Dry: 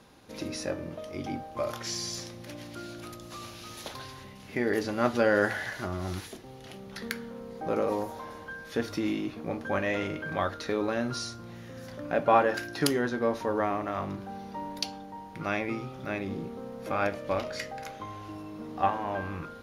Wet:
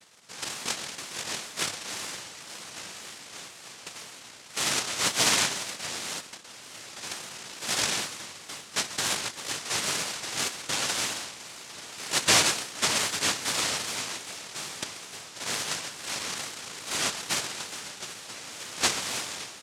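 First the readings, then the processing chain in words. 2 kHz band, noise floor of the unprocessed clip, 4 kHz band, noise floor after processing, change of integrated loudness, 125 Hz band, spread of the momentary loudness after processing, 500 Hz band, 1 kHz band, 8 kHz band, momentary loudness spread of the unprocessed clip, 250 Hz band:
+3.0 dB, −46 dBFS, +12.5 dB, −47 dBFS, +3.0 dB, −6.5 dB, 16 LU, −10.0 dB, −4.0 dB, +16.0 dB, 15 LU, −10.0 dB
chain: spectral peaks only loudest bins 64
on a send: single-tap delay 130 ms −15 dB
on the sum: cochlear-implant simulation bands 1
tape wow and flutter 70 cents

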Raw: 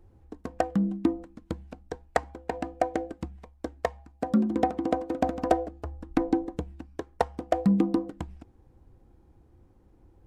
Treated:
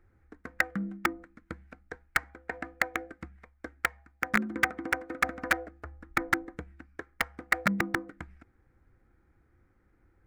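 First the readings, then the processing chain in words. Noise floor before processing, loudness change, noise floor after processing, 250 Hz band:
−60 dBFS, −2.0 dB, −68 dBFS, −9.5 dB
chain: wrap-around overflow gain 14 dB
flat-topped bell 1,700 Hz +15 dB 1.1 octaves
level −8.5 dB

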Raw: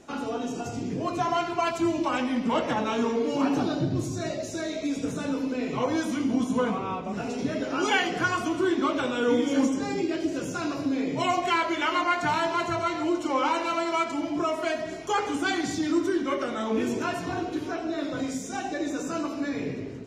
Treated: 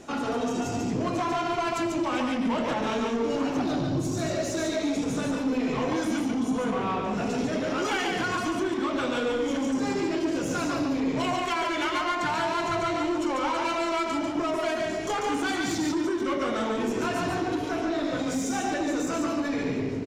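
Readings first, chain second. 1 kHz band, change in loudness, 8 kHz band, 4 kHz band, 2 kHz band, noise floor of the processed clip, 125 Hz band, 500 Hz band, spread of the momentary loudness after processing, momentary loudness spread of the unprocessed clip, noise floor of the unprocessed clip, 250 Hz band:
−0.5 dB, 0.0 dB, +2.0 dB, +0.5 dB, −0.5 dB, −31 dBFS, +1.0 dB, 0.0 dB, 2 LU, 7 LU, −35 dBFS, 0.0 dB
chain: downward compressor 6 to 1, threshold −27 dBFS, peak gain reduction 8.5 dB
soft clipping −29.5 dBFS, distortion −13 dB
single-tap delay 143 ms −3.5 dB
level +5.5 dB

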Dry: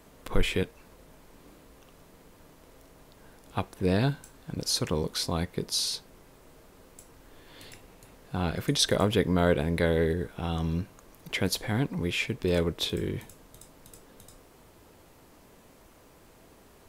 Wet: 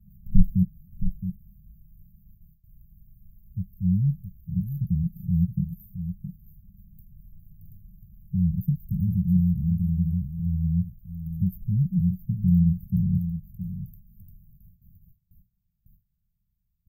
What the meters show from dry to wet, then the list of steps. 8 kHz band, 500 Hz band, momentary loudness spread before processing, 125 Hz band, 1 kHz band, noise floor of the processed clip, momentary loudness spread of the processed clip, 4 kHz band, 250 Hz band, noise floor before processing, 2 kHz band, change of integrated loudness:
below −40 dB, below −40 dB, 12 LU, +8.0 dB, below −40 dB, −75 dBFS, 13 LU, below −40 dB, +6.0 dB, −56 dBFS, below −40 dB, +2.5 dB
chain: phase shifter 0.15 Hz, delay 1.1 ms, feedback 62%
dynamic equaliser 180 Hz, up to +7 dB, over −41 dBFS, Q 2.9
single-tap delay 668 ms −9.5 dB
noise gate with hold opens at −40 dBFS
linear-phase brick-wall band-stop 210–13,000 Hz

